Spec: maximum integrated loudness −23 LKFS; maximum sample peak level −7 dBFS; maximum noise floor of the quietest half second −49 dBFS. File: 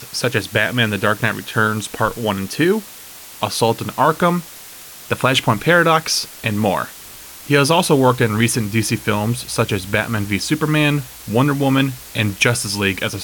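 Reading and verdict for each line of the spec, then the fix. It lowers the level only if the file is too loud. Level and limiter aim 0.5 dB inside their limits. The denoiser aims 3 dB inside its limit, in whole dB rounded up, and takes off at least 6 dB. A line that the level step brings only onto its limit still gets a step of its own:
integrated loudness −17.5 LKFS: out of spec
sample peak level −2.0 dBFS: out of spec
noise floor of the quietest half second −38 dBFS: out of spec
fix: broadband denoise 8 dB, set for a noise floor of −38 dBFS
level −6 dB

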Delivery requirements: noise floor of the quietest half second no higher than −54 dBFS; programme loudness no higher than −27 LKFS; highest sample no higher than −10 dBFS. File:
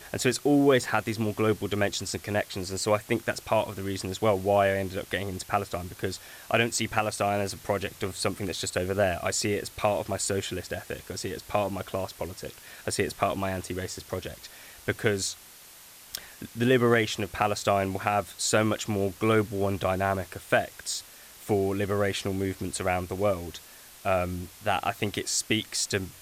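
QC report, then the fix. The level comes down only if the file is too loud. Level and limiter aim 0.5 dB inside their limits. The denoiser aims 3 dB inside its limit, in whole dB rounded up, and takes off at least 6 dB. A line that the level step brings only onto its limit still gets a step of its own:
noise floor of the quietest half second −50 dBFS: out of spec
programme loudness −28.0 LKFS: in spec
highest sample −8.5 dBFS: out of spec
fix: broadband denoise 7 dB, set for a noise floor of −50 dBFS
brickwall limiter −10.5 dBFS

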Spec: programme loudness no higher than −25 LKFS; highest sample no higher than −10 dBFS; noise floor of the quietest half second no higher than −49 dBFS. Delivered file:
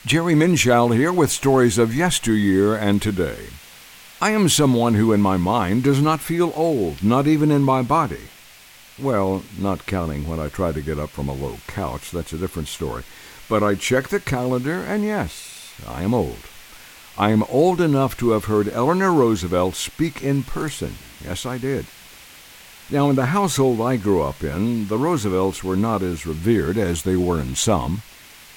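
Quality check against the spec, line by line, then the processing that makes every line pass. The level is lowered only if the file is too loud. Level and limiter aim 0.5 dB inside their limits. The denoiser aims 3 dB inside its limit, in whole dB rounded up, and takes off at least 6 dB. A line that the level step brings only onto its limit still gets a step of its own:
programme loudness −20.0 LKFS: out of spec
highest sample −4.5 dBFS: out of spec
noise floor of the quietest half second −46 dBFS: out of spec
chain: level −5.5 dB
brickwall limiter −10.5 dBFS

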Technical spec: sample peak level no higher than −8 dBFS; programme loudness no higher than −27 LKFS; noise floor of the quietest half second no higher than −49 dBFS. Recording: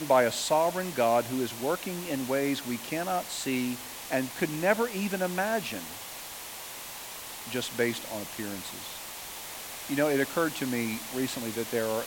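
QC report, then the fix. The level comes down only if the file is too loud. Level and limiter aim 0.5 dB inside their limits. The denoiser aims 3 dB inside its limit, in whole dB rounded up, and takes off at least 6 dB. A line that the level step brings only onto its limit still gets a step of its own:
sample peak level −12.0 dBFS: in spec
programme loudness −30.5 LKFS: in spec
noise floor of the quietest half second −41 dBFS: out of spec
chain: broadband denoise 11 dB, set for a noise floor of −41 dBFS

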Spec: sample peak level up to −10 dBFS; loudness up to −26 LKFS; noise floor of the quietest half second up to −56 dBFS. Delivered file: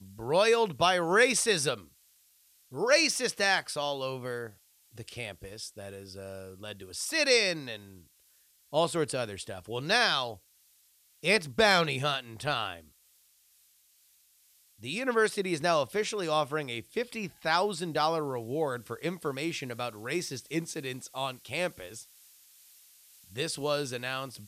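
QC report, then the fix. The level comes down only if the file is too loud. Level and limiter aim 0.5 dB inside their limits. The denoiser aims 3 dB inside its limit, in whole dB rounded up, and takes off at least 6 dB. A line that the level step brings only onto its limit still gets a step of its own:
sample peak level −8.5 dBFS: out of spec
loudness −29.0 LKFS: in spec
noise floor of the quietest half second −65 dBFS: in spec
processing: brickwall limiter −10.5 dBFS

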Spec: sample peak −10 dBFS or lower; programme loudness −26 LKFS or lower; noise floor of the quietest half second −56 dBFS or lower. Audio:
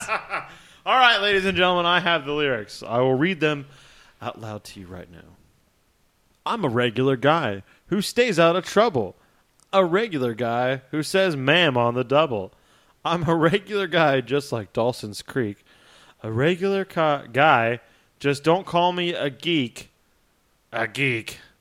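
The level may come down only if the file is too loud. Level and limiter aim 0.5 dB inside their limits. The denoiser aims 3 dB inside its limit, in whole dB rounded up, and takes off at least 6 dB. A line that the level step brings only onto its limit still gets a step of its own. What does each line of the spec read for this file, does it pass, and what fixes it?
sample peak −3.0 dBFS: out of spec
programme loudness −21.5 LKFS: out of spec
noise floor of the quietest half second −64 dBFS: in spec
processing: level −5 dB
brickwall limiter −10.5 dBFS

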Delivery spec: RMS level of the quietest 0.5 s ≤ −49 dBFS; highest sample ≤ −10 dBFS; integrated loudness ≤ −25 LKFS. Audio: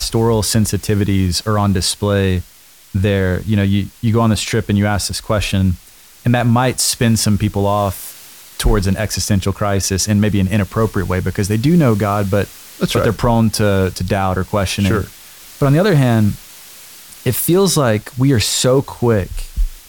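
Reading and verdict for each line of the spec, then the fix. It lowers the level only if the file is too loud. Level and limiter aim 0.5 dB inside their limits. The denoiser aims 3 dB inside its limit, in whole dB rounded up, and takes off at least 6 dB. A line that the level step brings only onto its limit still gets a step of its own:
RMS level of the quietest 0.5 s −44 dBFS: out of spec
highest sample −4.5 dBFS: out of spec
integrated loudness −16.0 LKFS: out of spec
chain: level −9.5 dB

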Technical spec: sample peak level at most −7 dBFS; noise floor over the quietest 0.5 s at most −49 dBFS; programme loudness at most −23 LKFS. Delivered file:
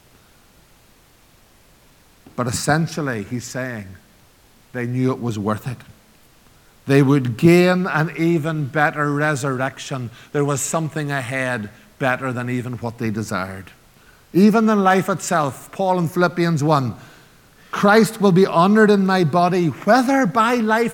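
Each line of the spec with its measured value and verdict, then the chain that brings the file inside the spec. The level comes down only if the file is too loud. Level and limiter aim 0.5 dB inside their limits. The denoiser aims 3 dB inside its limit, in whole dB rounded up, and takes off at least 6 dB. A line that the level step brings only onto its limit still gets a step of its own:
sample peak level −1.5 dBFS: out of spec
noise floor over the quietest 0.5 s −52 dBFS: in spec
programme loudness −18.5 LKFS: out of spec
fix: level −5 dB
brickwall limiter −7.5 dBFS

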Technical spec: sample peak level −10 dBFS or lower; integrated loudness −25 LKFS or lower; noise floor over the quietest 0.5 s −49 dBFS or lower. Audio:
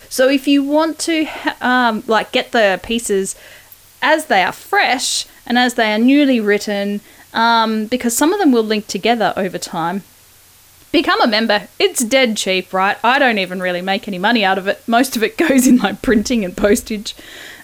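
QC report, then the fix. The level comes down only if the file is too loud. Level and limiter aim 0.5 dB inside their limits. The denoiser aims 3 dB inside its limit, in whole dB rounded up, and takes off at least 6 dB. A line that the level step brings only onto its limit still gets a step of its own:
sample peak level −2.5 dBFS: out of spec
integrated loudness −15.5 LKFS: out of spec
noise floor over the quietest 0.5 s −46 dBFS: out of spec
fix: level −10 dB

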